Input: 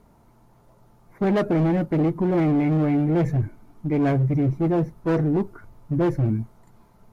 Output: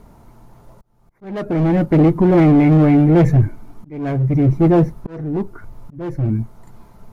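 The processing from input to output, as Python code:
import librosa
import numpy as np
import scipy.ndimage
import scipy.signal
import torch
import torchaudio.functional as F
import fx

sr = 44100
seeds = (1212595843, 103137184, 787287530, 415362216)

y = fx.auto_swell(x, sr, attack_ms=763.0)
y = fx.low_shelf(y, sr, hz=65.0, db=6.5)
y = y * librosa.db_to_amplitude(8.5)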